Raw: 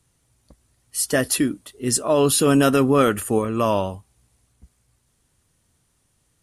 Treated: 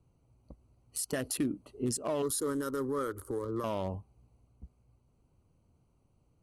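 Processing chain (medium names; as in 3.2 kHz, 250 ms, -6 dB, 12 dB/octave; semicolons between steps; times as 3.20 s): local Wiener filter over 25 samples; peaking EQ 9.6 kHz +3.5 dB 3 oct; compression 6:1, threshold -26 dBFS, peak gain reduction 12.5 dB; peak limiter -22.5 dBFS, peak gain reduction 10.5 dB; 2.22–3.64 s: static phaser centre 700 Hz, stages 6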